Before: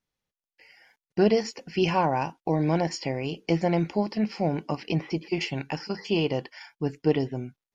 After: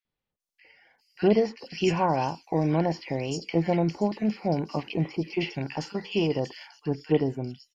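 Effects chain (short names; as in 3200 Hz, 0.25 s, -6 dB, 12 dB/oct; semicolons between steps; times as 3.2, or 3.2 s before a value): three bands offset in time mids, lows, highs 50/400 ms, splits 1500/4500 Hz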